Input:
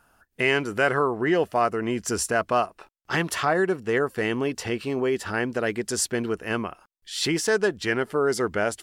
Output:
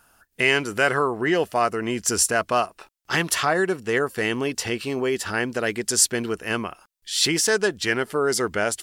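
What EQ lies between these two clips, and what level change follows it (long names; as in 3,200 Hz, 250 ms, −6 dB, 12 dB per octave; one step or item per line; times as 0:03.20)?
high-shelf EQ 2,600 Hz +9 dB
0.0 dB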